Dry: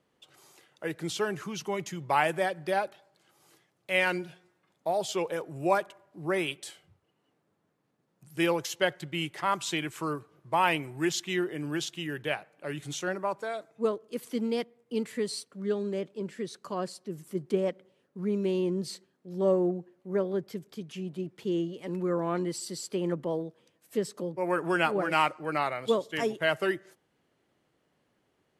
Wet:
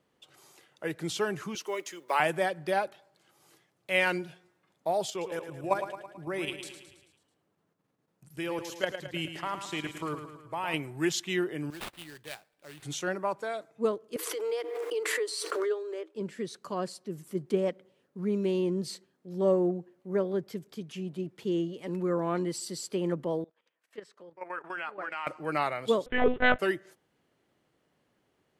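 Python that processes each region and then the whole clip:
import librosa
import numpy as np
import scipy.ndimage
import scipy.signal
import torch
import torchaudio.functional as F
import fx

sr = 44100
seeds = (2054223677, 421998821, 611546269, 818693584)

y = fx.chain(x, sr, fx.block_float(bits=7),
    fx.highpass(hz=340.0, slope=24),
    fx.peak_eq(hz=780.0, db=-7.5, octaves=0.24), at=(1.55, 2.2))
y = fx.chain(y, sr, fx.level_steps(step_db=11),
    fx.echo_feedback(ms=109, feedback_pct=54, wet_db=-9), at=(5.1, 10.74))
y = fx.chain(y, sr, fx.pre_emphasis(coefficient=0.8),
    fx.sample_hold(seeds[0], rate_hz=6300.0, jitter_pct=20), at=(11.7, 12.83))
y = fx.chain(y, sr, fx.cheby_ripple_highpass(hz=310.0, ripple_db=6),
    fx.pre_swell(db_per_s=27.0), at=(14.16, 16.15))
y = fx.chain(y, sr, fx.bandpass_q(hz=1600.0, q=0.98),
    fx.level_steps(step_db=12), at=(23.44, 25.27))
y = fx.chain(y, sr, fx.lowpass(hz=2000.0, slope=12),
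    fx.leveller(passes=2),
    fx.lpc_monotone(seeds[1], pitch_hz=250.0, order=10), at=(26.06, 26.59))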